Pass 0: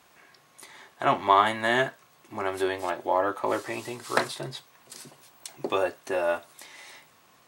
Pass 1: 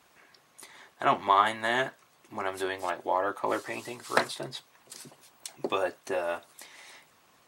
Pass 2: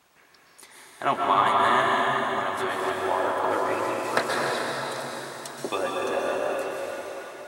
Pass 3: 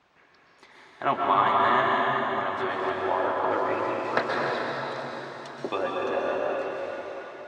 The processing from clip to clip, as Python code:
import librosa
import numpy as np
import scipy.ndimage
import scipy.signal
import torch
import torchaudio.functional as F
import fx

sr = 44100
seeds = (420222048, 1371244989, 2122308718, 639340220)

y1 = fx.hpss(x, sr, part='harmonic', gain_db=-7)
y2 = fx.rev_plate(y1, sr, seeds[0], rt60_s=4.8, hf_ratio=0.8, predelay_ms=110, drr_db=-3.5)
y3 = fx.air_absorb(y2, sr, metres=180.0)